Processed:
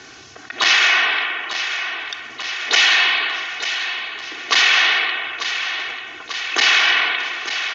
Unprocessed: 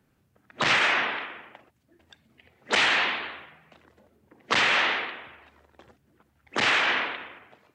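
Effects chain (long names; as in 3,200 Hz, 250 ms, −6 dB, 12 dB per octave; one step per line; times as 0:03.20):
Butterworth low-pass 6,700 Hz 96 dB per octave
spectral tilt +4.5 dB per octave
comb filter 2.7 ms, depth 65%
repeating echo 892 ms, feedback 53%, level −18.5 dB
envelope flattener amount 50%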